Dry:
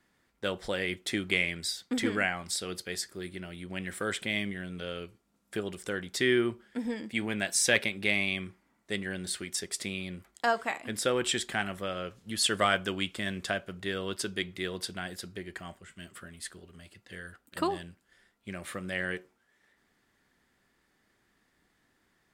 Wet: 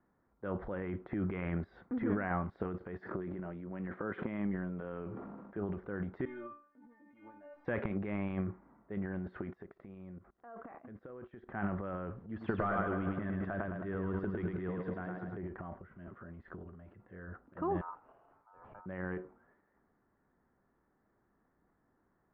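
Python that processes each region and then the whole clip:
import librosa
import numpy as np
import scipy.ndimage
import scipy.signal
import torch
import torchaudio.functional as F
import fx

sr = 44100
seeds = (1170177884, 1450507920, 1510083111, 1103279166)

y = fx.chain(x, sr, fx.highpass(hz=140.0, slope=12),
    fx.sustainer(db_per_s=30.0), at=(3.0, 5.57))
y = fx.chain(y, sr, fx.cvsd(bps=64000),
    fx.low_shelf(hz=130.0, db=-8.0),
    fx.stiff_resonator(f0_hz=290.0, decay_s=0.42, stiffness=0.002), at=(6.25, 7.65))
y = fx.chain(y, sr, fx.high_shelf(hz=8500.0, db=5.0),
    fx.notch(hz=900.0, q=8.1),
    fx.level_steps(step_db=23), at=(9.53, 11.49))
y = fx.chain(y, sr, fx.echo_feedback(ms=105, feedback_pct=58, wet_db=-6),
    fx.clip_hard(threshold_db=-21.5), at=(12.2, 15.37))
y = fx.chain(y, sr, fx.high_shelf(hz=2400.0, db=-8.5),
    fx.over_compress(threshold_db=-50.0, ratio=-1.0),
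    fx.ring_mod(carrier_hz=1100.0), at=(17.81, 18.86))
y = fx.dynamic_eq(y, sr, hz=620.0, q=0.85, threshold_db=-41.0, ratio=4.0, max_db=-5)
y = fx.transient(y, sr, attack_db=-4, sustain_db=11)
y = scipy.signal.sosfilt(scipy.signal.butter(4, 1300.0, 'lowpass', fs=sr, output='sos'), y)
y = F.gain(torch.from_numpy(y), -1.5).numpy()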